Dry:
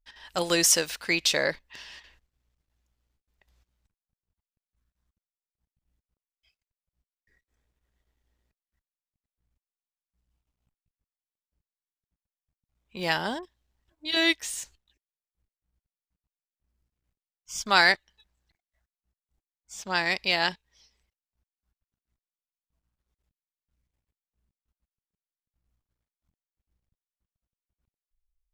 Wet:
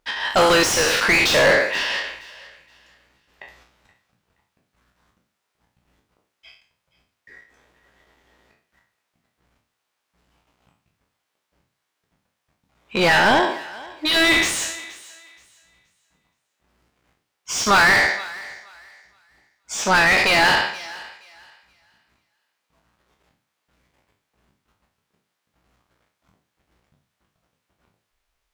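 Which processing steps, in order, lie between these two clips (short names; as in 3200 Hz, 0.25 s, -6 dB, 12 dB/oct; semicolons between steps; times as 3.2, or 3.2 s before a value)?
spectral trails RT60 0.48 s; overdrive pedal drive 35 dB, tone 1600 Hz, clips at -2.5 dBFS; thinning echo 0.474 s, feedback 25%, high-pass 580 Hz, level -19 dB; gain -2 dB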